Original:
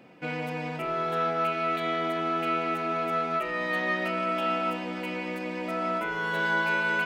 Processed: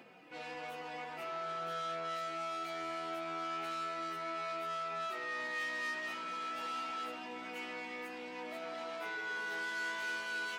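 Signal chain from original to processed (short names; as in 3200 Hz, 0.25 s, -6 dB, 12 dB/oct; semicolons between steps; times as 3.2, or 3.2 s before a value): soft clip -31 dBFS, distortion -9 dB; limiter -34.5 dBFS, peak gain reduction 3.5 dB; plain phase-vocoder stretch 1.5×; HPF 130 Hz 6 dB/oct; low shelf 280 Hz -9.5 dB; notch 560 Hz, Q 12; gain +1 dB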